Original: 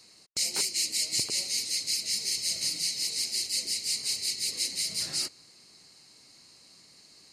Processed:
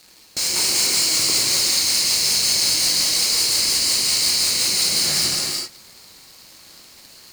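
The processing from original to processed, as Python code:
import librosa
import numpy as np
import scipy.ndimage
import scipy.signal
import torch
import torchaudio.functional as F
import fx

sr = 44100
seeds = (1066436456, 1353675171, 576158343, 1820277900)

y = fx.leveller(x, sr, passes=5)
y = fx.rev_gated(y, sr, seeds[0], gate_ms=420, shape='flat', drr_db=-4.5)
y = F.gain(torch.from_numpy(y), -5.5).numpy()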